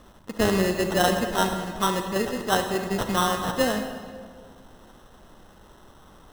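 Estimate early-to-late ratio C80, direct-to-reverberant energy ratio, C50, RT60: 7.5 dB, 5.5 dB, 6.5 dB, 1.7 s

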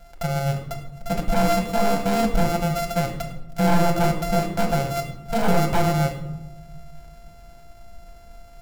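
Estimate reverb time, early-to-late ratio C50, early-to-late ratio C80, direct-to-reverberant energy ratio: 1.0 s, 7.5 dB, 10.0 dB, 0.5 dB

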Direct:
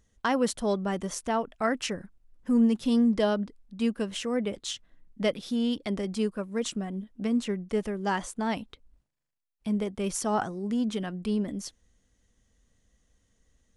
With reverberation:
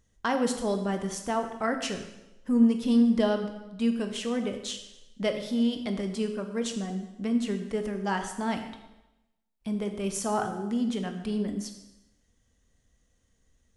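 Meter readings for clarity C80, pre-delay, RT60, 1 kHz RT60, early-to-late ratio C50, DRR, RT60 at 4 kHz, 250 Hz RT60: 10.0 dB, 7 ms, 0.95 s, 0.95 s, 8.0 dB, 5.5 dB, 0.90 s, 0.90 s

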